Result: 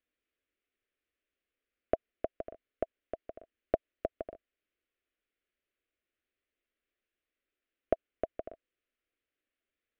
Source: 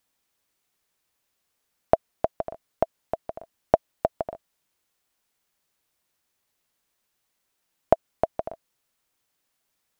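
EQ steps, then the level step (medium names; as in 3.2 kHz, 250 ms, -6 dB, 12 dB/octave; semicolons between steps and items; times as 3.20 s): low-pass 2.8 kHz 24 dB/octave; static phaser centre 370 Hz, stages 4; -4.5 dB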